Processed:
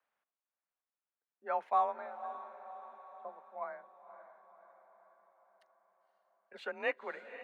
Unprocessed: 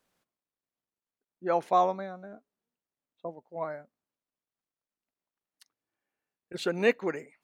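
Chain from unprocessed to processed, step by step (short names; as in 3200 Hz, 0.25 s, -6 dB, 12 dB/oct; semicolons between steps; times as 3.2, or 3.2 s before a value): three-band isolator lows -18 dB, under 580 Hz, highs -21 dB, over 2600 Hz; frequency shift +35 Hz; diffused feedback echo 0.531 s, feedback 55%, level -12.5 dB; gain -3.5 dB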